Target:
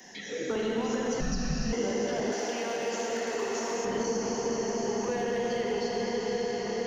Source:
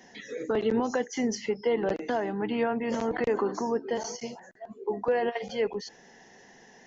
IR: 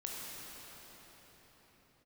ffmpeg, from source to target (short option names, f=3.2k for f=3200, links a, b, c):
-filter_complex "[0:a]aemphasis=mode=production:type=50kf,bandreject=f=62.33:t=h:w=4,bandreject=f=124.66:t=h:w=4,bandreject=f=186.99:t=h:w=4,bandreject=f=249.32:t=h:w=4,bandreject=f=311.65:t=h:w=4,bandreject=f=373.98:t=h:w=4,bandreject=f=436.31:t=h:w=4,bandreject=f=498.64:t=h:w=4,bandreject=f=560.97:t=h:w=4,bandreject=f=623.3:t=h:w=4,bandreject=f=685.63:t=h:w=4,bandreject=f=747.96:t=h:w=4,bandreject=f=810.29:t=h:w=4,bandreject=f=872.62:t=h:w=4,bandreject=f=934.95:t=h:w=4[a];[1:a]atrim=start_sample=2205,asetrate=25137,aresample=44100[b];[a][b]afir=irnorm=-1:irlink=0,acrossover=split=86|240|1300[c][d][e][f];[c]acompressor=threshold=-56dB:ratio=4[g];[d]acompressor=threshold=-42dB:ratio=4[h];[e]acompressor=threshold=-33dB:ratio=4[i];[f]acompressor=threshold=-43dB:ratio=4[j];[g][h][i][j]amix=inputs=4:normalize=0,acrossover=split=180|560|2700[k][l][m][n];[m]asoftclip=type=hard:threshold=-38dB[o];[k][l][o][n]amix=inputs=4:normalize=0,asettb=1/sr,asplit=3[p][q][r];[p]atrim=end=1.204[s];[q]atrim=start=1.2:end=1.73,asetpts=PTS-STARTPTS,afade=t=in:d=0.004:c=qsin,afade=t=out:st=0.526:d=0.004:c=qsin,afreqshift=-260[t];[r]atrim=start=1.726[u];[s][t]acrossfade=d=0.004:c1=hsin:c2=qsin[v];[v][u]acrossfade=d=0.004:c1=qsin:c2=hsin,asettb=1/sr,asplit=3[w][x][y];[w]atrim=end=2.324[z];[x]atrim=start=2.32:end=3.85,asetpts=PTS-STARTPTS,afade=t=in:d=0.004:c=qsin,afade=t=out:st=1.526:d=0.004:c=qsin,bass=f=250:g=-14,treble=f=4k:g=7[aa];[y]atrim=start=3.846[ab];[z][aa]acrossfade=d=0.004:c1=hsin:c2=qsin[ac];[ac][ab]acrossfade=d=0.004:c1=qsin:c2=hsin,volume=3dB"